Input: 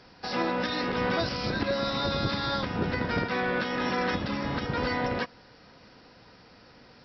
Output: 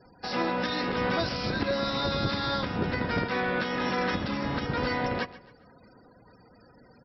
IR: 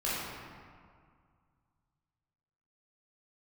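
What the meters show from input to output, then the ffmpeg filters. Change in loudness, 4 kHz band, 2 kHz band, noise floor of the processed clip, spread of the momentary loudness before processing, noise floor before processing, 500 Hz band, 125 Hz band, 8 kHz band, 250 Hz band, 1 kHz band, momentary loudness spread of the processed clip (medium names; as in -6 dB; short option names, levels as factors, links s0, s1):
0.0 dB, 0.0 dB, 0.0 dB, -57 dBFS, 3 LU, -55 dBFS, 0.0 dB, 0.0 dB, no reading, 0.0 dB, 0.0 dB, 3 LU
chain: -filter_complex "[0:a]afftfilt=real='re*gte(hypot(re,im),0.00355)':imag='im*gte(hypot(re,im),0.00355)':win_size=1024:overlap=0.75,asplit=2[s0][s1];[s1]aecho=0:1:135|270|405:0.133|0.048|0.0173[s2];[s0][s2]amix=inputs=2:normalize=0"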